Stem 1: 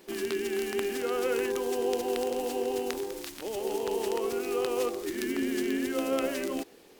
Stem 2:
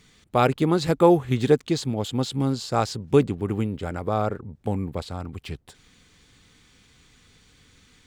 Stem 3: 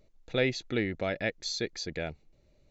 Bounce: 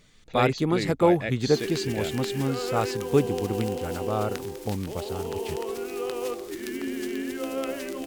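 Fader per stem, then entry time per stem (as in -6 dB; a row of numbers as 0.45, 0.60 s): -1.5, -3.5, -0.5 dB; 1.45, 0.00, 0.00 s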